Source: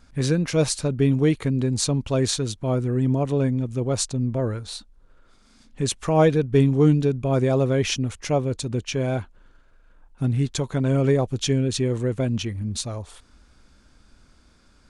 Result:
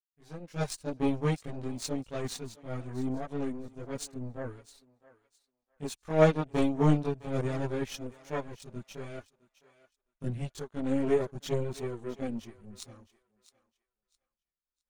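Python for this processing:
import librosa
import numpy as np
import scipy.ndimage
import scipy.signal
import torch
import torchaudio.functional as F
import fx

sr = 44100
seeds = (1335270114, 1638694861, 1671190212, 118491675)

y = fx.fade_in_head(x, sr, length_s=0.66)
y = fx.power_curve(y, sr, exponent=2.0)
y = fx.chorus_voices(y, sr, voices=6, hz=0.18, base_ms=22, depth_ms=3.9, mix_pct=65)
y = fx.echo_thinned(y, sr, ms=661, feedback_pct=23, hz=680.0, wet_db=-16.5)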